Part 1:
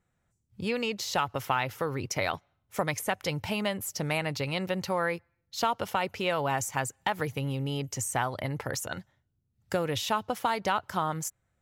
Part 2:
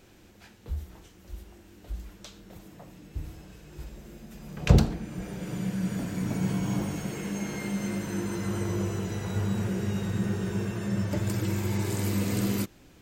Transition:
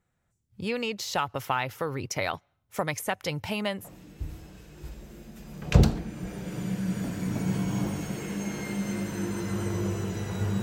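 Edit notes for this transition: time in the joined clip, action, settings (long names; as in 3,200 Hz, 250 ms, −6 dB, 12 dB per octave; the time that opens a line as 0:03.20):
part 1
0:03.82: continue with part 2 from 0:02.77, crossfade 0.14 s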